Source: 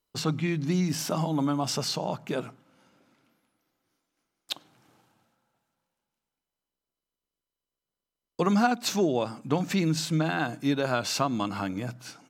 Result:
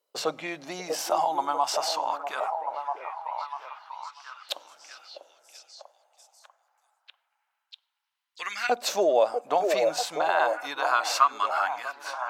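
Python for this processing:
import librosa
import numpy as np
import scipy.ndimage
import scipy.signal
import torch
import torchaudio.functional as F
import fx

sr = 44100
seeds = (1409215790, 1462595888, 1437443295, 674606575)

y = fx.filter_lfo_highpass(x, sr, shape='saw_up', hz=0.23, low_hz=520.0, high_hz=2100.0, q=4.2)
y = fx.echo_stepped(y, sr, ms=644, hz=480.0, octaves=0.7, feedback_pct=70, wet_db=-2.0)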